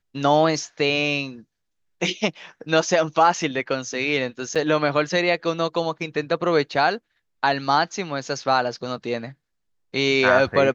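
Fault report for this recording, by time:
4.55–4.56 gap 5.8 ms

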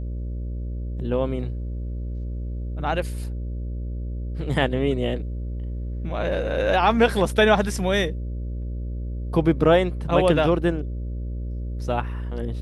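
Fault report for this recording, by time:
buzz 60 Hz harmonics 10 -29 dBFS

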